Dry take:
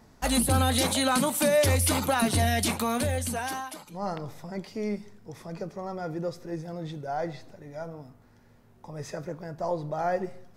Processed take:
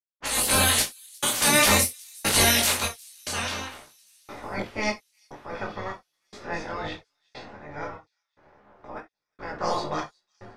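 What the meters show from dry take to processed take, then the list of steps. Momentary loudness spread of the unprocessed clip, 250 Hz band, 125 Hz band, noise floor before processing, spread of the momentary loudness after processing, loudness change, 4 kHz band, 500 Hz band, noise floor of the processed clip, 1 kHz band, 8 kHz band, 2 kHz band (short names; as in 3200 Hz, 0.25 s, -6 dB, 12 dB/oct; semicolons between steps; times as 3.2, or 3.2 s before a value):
17 LU, -4.0 dB, -5.5 dB, -57 dBFS, 23 LU, +4.5 dB, +7.0 dB, -3.0 dB, -83 dBFS, +0.5 dB, +7.0 dB, +7.0 dB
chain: spectral limiter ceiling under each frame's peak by 26 dB; low-pass opened by the level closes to 1100 Hz, open at -23 dBFS; notches 60/120/180/240/300/360/420 Hz; spectral repair 5.55–6.09, 2600–6300 Hz after; AGC gain up to 7 dB; step gate "..xxxxxx.." 147 bpm -60 dB; thin delay 0.359 s, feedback 62%, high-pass 5000 Hz, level -23 dB; non-linear reverb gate 90 ms falling, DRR 3.5 dB; detuned doubles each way 15 cents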